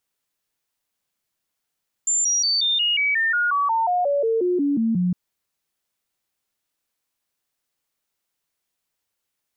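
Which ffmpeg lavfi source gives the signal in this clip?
ffmpeg -f lavfi -i "aevalsrc='0.133*clip(min(mod(t,0.18),0.18-mod(t,0.18))/0.005,0,1)*sin(2*PI*7230*pow(2,-floor(t/0.18)/3)*mod(t,0.18))':duration=3.06:sample_rate=44100" out.wav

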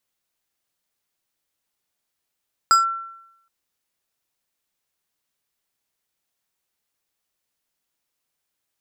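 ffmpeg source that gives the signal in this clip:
ffmpeg -f lavfi -i "aevalsrc='0.355*pow(10,-3*t/0.82)*sin(2*PI*1350*t+0.54*clip(1-t/0.14,0,1)*sin(2*PI*4.65*1350*t))':duration=0.77:sample_rate=44100" out.wav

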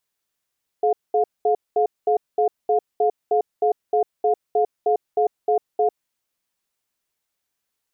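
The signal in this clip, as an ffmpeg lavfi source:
ffmpeg -f lavfi -i "aevalsrc='0.126*(sin(2*PI*426*t)+sin(2*PI*711*t))*clip(min(mod(t,0.31),0.1-mod(t,0.31))/0.005,0,1)':duration=5.11:sample_rate=44100" out.wav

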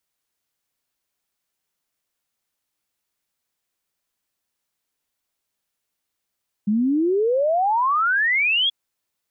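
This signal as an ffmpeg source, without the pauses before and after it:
ffmpeg -f lavfi -i "aevalsrc='0.15*clip(min(t,2.03-t)/0.01,0,1)*sin(2*PI*200*2.03/log(3400/200)*(exp(log(3400/200)*t/2.03)-1))':duration=2.03:sample_rate=44100" out.wav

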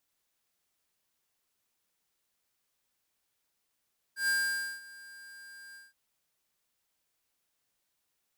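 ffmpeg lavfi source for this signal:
ffmpeg -f lavfi -i "aevalsrc='0.0422*(2*lt(mod(1600*t,1),0.5)-1)':duration=1.771:sample_rate=44100,afade=type=in:duration=0.121,afade=type=out:start_time=0.121:duration=0.521:silence=0.0794,afade=type=out:start_time=1.59:duration=0.181" out.wav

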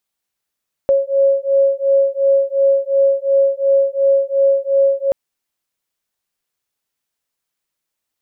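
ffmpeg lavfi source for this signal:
ffmpeg -f lavfi -i "aevalsrc='0.188*(sin(2*PI*548*t)+sin(2*PI*550.8*t))':duration=4.23:sample_rate=44100" out.wav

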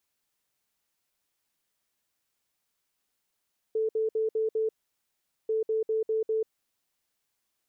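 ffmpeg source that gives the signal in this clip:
ffmpeg -f lavfi -i "aevalsrc='0.0631*sin(2*PI*440*t)*clip(min(mod(mod(t,1.74),0.2),0.14-mod(mod(t,1.74),0.2))/0.005,0,1)*lt(mod(t,1.74),1)':duration=3.48:sample_rate=44100" out.wav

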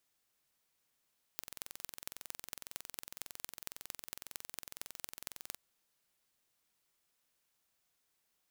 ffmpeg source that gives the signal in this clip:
ffmpeg -f lavfi -i "aevalsrc='0.251*eq(mod(n,2014),0)*(0.5+0.5*eq(mod(n,10070),0))':duration=4.17:sample_rate=44100" out.wav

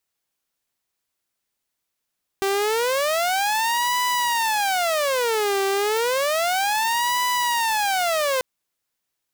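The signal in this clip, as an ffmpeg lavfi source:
ffmpeg -f lavfi -i "aevalsrc='0.141*(2*mod((690.5*t-299.5/(2*PI*0.31)*sin(2*PI*0.31*t)),1)-1)':duration=5.99:sample_rate=44100" out.wav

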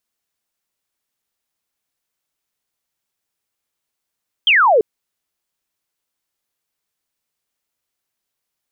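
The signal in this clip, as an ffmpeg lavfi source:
ffmpeg -f lavfi -i "aevalsrc='0.355*clip(t/0.002,0,1)*clip((0.34-t)/0.002,0,1)*sin(2*PI*3300*0.34/log(400/3300)*(exp(log(400/3300)*t/0.34)-1))':duration=0.34:sample_rate=44100" out.wav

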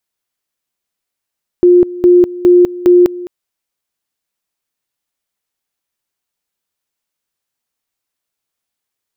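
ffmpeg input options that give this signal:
ffmpeg -f lavfi -i "aevalsrc='pow(10,(-3-18.5*gte(mod(t,0.41),0.2))/20)*sin(2*PI*355*t)':duration=1.64:sample_rate=44100" out.wav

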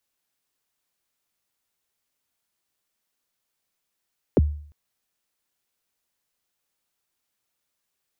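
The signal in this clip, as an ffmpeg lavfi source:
ffmpeg -f lavfi -i "aevalsrc='0.282*pow(10,-3*t/0.54)*sin(2*PI*(570*0.028/log(74/570)*(exp(log(74/570)*min(t,0.028)/0.028)-1)+74*max(t-0.028,0)))':duration=0.35:sample_rate=44100" out.wav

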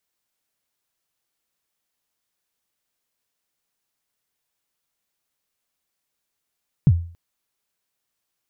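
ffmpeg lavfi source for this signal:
ffmpeg -f lavfi -i "aevalsrc='0.447*pow(10,-3*t/0.44)*sin(2*PI*(170*0.05/log(85/170)*(exp(log(85/170)*min(t,0.05)/0.05)-1)+85*max(t-0.05,0)))':duration=0.28:sample_rate=44100" out.wav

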